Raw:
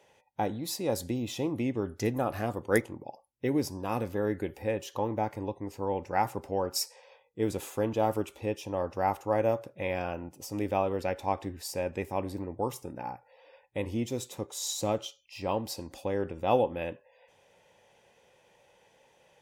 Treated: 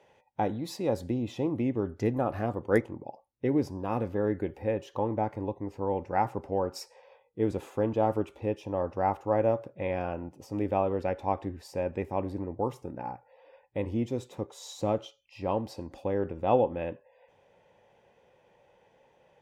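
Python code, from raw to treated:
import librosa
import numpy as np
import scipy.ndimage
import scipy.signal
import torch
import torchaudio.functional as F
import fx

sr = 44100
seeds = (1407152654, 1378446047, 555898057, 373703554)

y = fx.lowpass(x, sr, hz=fx.steps((0.0, 2200.0), (0.89, 1300.0)), slope=6)
y = y * 10.0 ** (2.0 / 20.0)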